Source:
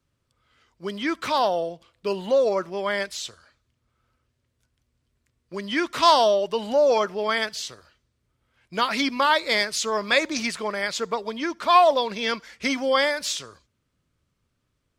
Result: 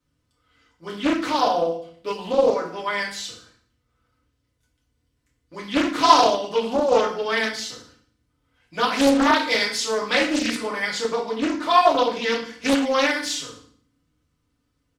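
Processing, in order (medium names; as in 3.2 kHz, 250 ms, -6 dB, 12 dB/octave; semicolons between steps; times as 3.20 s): comb 4 ms, depth 34%; FDN reverb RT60 0.53 s, low-frequency decay 1.55×, high-frequency decay 0.95×, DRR -4.5 dB; loudspeaker Doppler distortion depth 0.81 ms; trim -5 dB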